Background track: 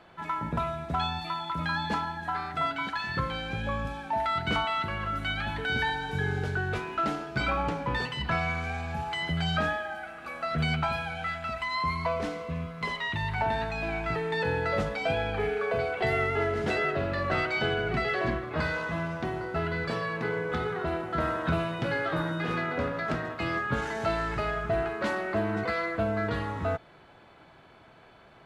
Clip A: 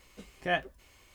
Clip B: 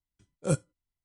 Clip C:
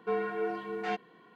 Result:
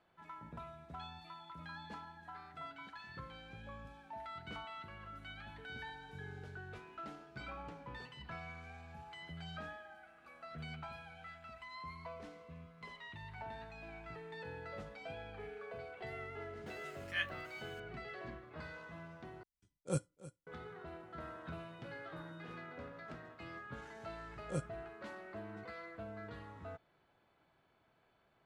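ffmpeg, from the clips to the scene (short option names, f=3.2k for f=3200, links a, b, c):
-filter_complex "[2:a]asplit=2[a][b];[0:a]volume=-19dB[c];[1:a]highpass=f=1.5k:w=0.5412,highpass=f=1.5k:w=1.3066[d];[a]aecho=1:1:314:0.141[e];[b]highshelf=f=9.3k:g=-11[f];[c]asplit=2[g][h];[g]atrim=end=19.434[i];[e]atrim=end=1.04,asetpts=PTS-STARTPTS,volume=-9dB[j];[h]atrim=start=20.466[k];[d]atrim=end=1.14,asetpts=PTS-STARTPTS,volume=-3.5dB,afade=t=in:d=0.004:c=hsin,afade=t=out:st=1.136:d=0.004:c=hsin,adelay=16660[l];[f]atrim=end=1.04,asetpts=PTS-STARTPTS,volume=-12dB,afade=t=in:d=0.004:c=hsin,afade=t=out:st=1.036:d=0.004:c=hsin,adelay=24050[m];[i][j]acrossfade=d=0.004:c1=hsin:c2=hsin[n];[n][k]acrossfade=d=0.004:c1=hsin:c2=hsin[o];[o][l][m]amix=inputs=3:normalize=0"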